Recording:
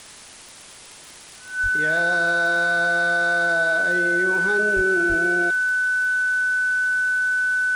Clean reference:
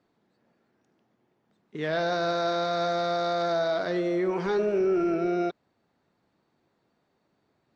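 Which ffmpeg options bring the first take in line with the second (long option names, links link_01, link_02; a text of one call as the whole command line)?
ffmpeg -i in.wav -filter_complex "[0:a]adeclick=threshold=4,bandreject=frequency=1500:width=30,asplit=3[link_01][link_02][link_03];[link_01]afade=type=out:start_time=1.62:duration=0.02[link_04];[link_02]highpass=frequency=140:width=0.5412,highpass=frequency=140:width=1.3066,afade=type=in:start_time=1.62:duration=0.02,afade=type=out:start_time=1.74:duration=0.02[link_05];[link_03]afade=type=in:start_time=1.74:duration=0.02[link_06];[link_04][link_05][link_06]amix=inputs=3:normalize=0,asplit=3[link_07][link_08][link_09];[link_07]afade=type=out:start_time=4.75:duration=0.02[link_10];[link_08]highpass=frequency=140:width=0.5412,highpass=frequency=140:width=1.3066,afade=type=in:start_time=4.75:duration=0.02,afade=type=out:start_time=4.87:duration=0.02[link_11];[link_09]afade=type=in:start_time=4.87:duration=0.02[link_12];[link_10][link_11][link_12]amix=inputs=3:normalize=0,asplit=3[link_13][link_14][link_15];[link_13]afade=type=out:start_time=5.08:duration=0.02[link_16];[link_14]highpass=frequency=140:width=0.5412,highpass=frequency=140:width=1.3066,afade=type=in:start_time=5.08:duration=0.02,afade=type=out:start_time=5.2:duration=0.02[link_17];[link_15]afade=type=in:start_time=5.2:duration=0.02[link_18];[link_16][link_17][link_18]amix=inputs=3:normalize=0,afwtdn=0.0089" out.wav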